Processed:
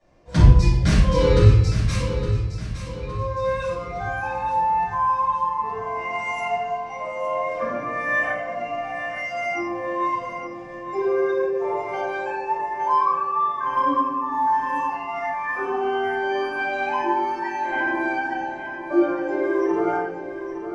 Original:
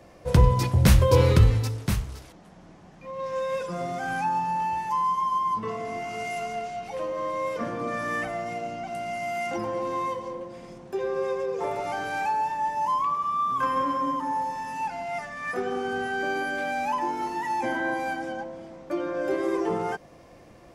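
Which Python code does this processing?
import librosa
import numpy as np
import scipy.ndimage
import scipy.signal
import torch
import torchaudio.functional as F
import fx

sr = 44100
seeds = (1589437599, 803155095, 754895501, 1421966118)

p1 = fx.noise_reduce_blind(x, sr, reduce_db=12)
p2 = fx.tremolo_random(p1, sr, seeds[0], hz=3.5, depth_pct=55)
p3 = fx.rider(p2, sr, range_db=4, speed_s=0.5)
p4 = p2 + F.gain(torch.from_numpy(p3), 0.0).numpy()
p5 = scipy.signal.sosfilt(scipy.signal.butter(4, 8000.0, 'lowpass', fs=sr, output='sos'), p4)
p6 = p5 + fx.echo_feedback(p5, sr, ms=863, feedback_pct=47, wet_db=-10, dry=0)
p7 = fx.room_shoebox(p6, sr, seeds[1], volume_m3=230.0, walls='mixed', distance_m=6.1)
y = F.gain(torch.from_numpy(p7), -13.5).numpy()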